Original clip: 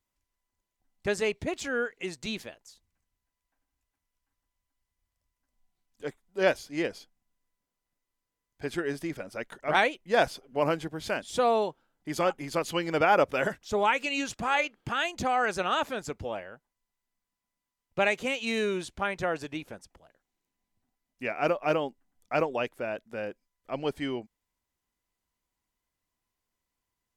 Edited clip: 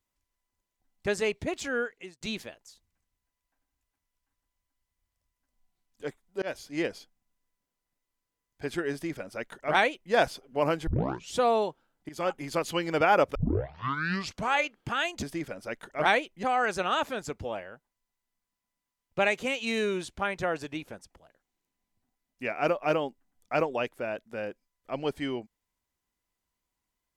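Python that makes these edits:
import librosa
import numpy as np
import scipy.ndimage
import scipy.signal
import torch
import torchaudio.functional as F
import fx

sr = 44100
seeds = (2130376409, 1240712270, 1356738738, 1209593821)

y = fx.edit(x, sr, fx.fade_out_span(start_s=1.78, length_s=0.43),
    fx.fade_in_span(start_s=6.42, length_s=0.33, curve='qsin'),
    fx.duplicate(start_s=8.92, length_s=1.2, to_s=15.23),
    fx.tape_start(start_s=10.87, length_s=0.48),
    fx.fade_in_from(start_s=12.09, length_s=0.26, floor_db=-17.0),
    fx.tape_start(start_s=13.35, length_s=1.18), tone=tone)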